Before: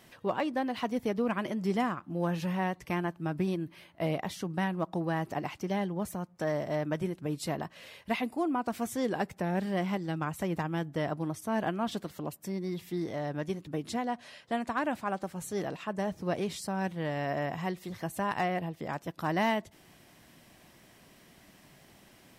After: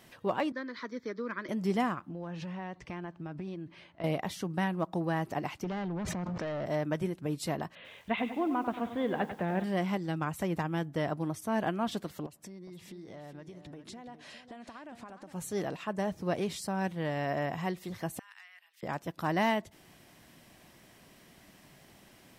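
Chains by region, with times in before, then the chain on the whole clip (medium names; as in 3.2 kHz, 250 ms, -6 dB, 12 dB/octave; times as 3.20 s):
0.52–1.49 s: three-band isolator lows -19 dB, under 280 Hz, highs -23 dB, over 6.5 kHz + static phaser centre 2.8 kHz, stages 6
2.09–4.04 s: Bessel low-pass 5.1 kHz, order 4 + compression 5:1, threshold -37 dBFS
5.64–6.66 s: hard clipper -33 dBFS + distance through air 170 m + level flattener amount 100%
7.75–9.64 s: elliptic low-pass 3.6 kHz + bit-crushed delay 95 ms, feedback 55%, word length 9-bit, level -10 dB
12.26–15.33 s: low-pass 9.3 kHz + compression 16:1, threshold -43 dBFS + delay 411 ms -10.5 dB
18.19–18.83 s: compression 4:1, threshold -44 dBFS + high-pass 1.5 kHz 24 dB/octave
whole clip: none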